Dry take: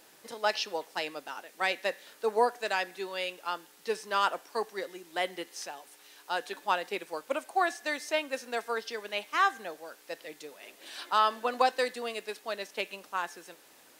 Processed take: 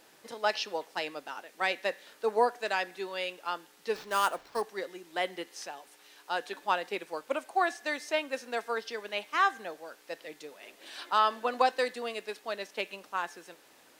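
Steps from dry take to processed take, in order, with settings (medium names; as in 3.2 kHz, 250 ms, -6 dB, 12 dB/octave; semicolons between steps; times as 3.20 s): 3.95–4.62 s: sample-rate reducer 9.7 kHz, jitter 0%; treble shelf 6.8 kHz -6 dB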